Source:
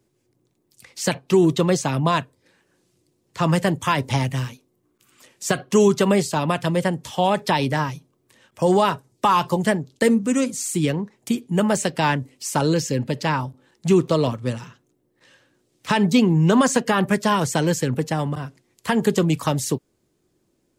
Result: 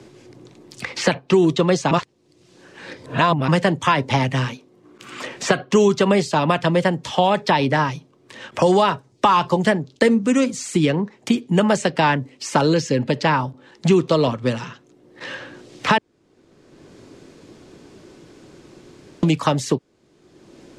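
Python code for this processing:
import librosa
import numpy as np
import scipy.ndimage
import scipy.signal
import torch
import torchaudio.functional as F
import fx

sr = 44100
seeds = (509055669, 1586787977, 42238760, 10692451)

y = fx.edit(x, sr, fx.reverse_span(start_s=1.91, length_s=1.57),
    fx.room_tone_fill(start_s=15.98, length_s=3.25), tone=tone)
y = scipy.signal.sosfilt(scipy.signal.butter(2, 5200.0, 'lowpass', fs=sr, output='sos'), y)
y = fx.low_shelf(y, sr, hz=140.0, db=-7.5)
y = fx.band_squash(y, sr, depth_pct=70)
y = F.gain(torch.from_numpy(y), 4.0).numpy()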